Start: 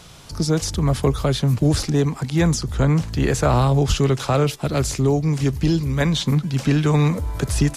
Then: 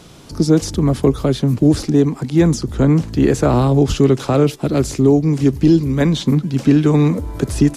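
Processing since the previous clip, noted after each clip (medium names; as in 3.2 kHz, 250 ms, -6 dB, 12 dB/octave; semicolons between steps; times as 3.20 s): peaking EQ 300 Hz +11.5 dB 1.5 oct; level rider; trim -1 dB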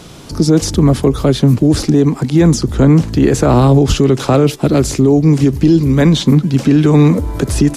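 peak limiter -8 dBFS, peak gain reduction 6.5 dB; trim +6.5 dB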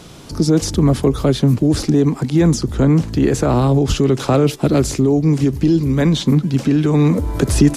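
gain riding 0.5 s; trim -4 dB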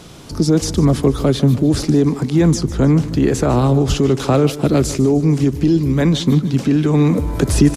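feedback delay 151 ms, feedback 50%, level -16 dB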